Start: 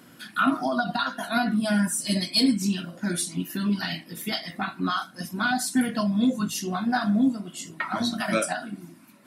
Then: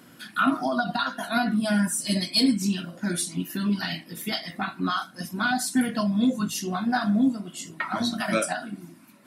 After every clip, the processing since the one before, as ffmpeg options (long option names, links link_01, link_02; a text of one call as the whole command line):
ffmpeg -i in.wav -af anull out.wav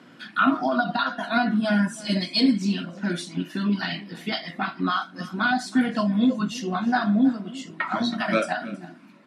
ffmpeg -i in.wav -af "highpass=150,lowpass=4000,aecho=1:1:322:0.112,volume=2.5dB" out.wav